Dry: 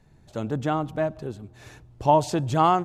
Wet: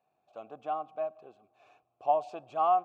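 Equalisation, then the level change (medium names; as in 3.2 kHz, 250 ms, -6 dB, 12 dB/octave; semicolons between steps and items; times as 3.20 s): vowel filter a; bass shelf 140 Hz -10 dB; 0.0 dB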